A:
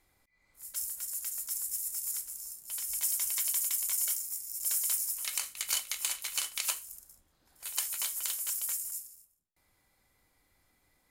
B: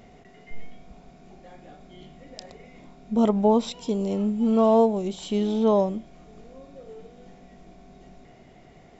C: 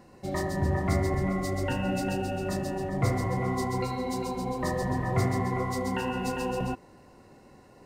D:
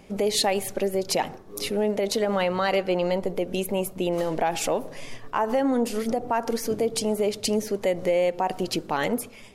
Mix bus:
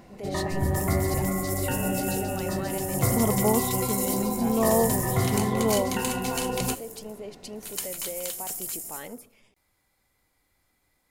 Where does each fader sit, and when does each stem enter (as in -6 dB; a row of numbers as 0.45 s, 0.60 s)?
0.0 dB, -5.0 dB, +1.0 dB, -15.0 dB; 0.00 s, 0.00 s, 0.00 s, 0.00 s